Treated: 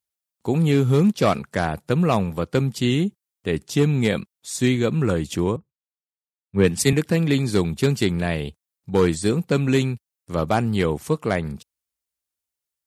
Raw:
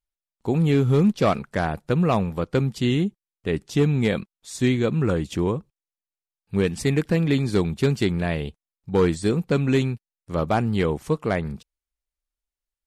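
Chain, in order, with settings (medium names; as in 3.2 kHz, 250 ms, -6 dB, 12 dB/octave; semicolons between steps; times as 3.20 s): high-pass 70 Hz 24 dB/octave; treble shelf 5.7 kHz +8.5 dB; 5.56–6.93 s: three bands expanded up and down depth 100%; trim +1 dB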